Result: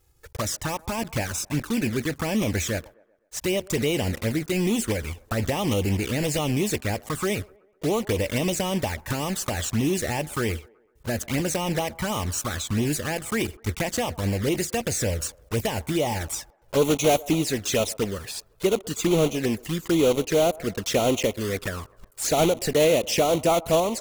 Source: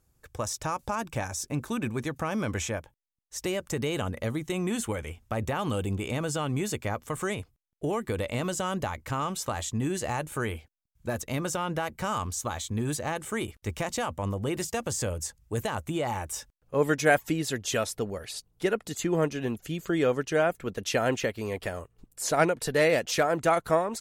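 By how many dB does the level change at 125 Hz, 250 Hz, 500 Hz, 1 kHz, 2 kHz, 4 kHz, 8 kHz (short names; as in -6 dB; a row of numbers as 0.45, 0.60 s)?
+5.0, +6.0, +4.5, +1.0, +1.0, +7.0, +5.5 dB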